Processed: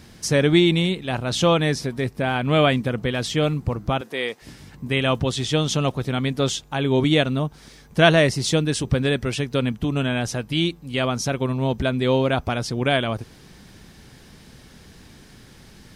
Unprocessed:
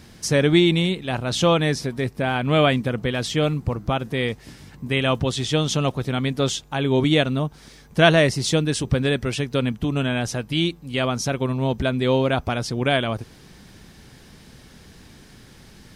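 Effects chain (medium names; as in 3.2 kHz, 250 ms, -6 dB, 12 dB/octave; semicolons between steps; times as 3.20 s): 4.01–4.42 s: high-pass 390 Hz 12 dB/octave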